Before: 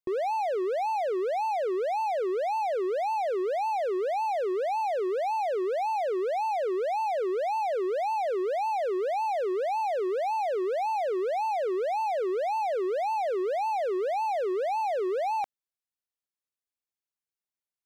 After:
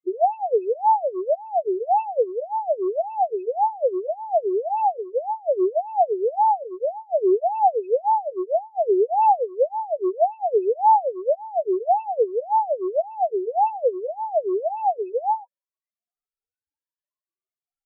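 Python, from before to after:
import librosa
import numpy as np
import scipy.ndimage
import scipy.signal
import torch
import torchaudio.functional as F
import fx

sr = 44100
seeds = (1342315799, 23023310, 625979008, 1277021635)

y = fx.spec_ripple(x, sr, per_octave=1.2, drift_hz=0.69, depth_db=23)
y = fx.high_shelf(y, sr, hz=2400.0, db=-11.0)
y = fx.spec_topn(y, sr, count=4)
y = fx.comb_cascade(y, sr, direction='falling', hz=1.2)
y = y * 10.0 ** (6.5 / 20.0)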